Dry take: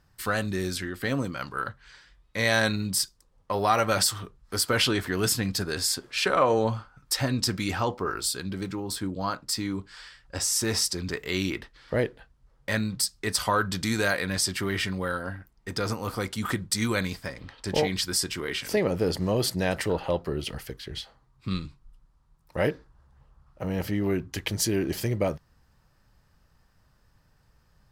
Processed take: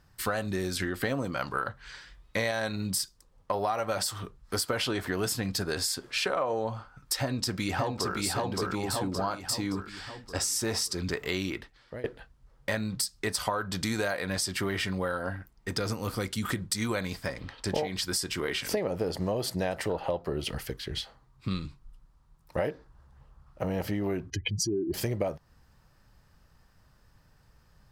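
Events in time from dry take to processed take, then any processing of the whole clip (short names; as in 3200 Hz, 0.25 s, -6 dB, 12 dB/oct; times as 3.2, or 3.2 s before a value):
0.8–2.51 gain +3.5 dB
7.21–8.18 echo throw 0.57 s, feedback 50%, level -2.5 dB
11.28–12.04 fade out, to -24 dB
15.79–16.57 bell 830 Hz -7.5 dB 1.6 oct
24.3–24.94 spectral contrast raised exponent 2.5
whole clip: dynamic EQ 690 Hz, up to +7 dB, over -40 dBFS, Q 1.2; compressor 6:1, threshold -29 dBFS; gain +2 dB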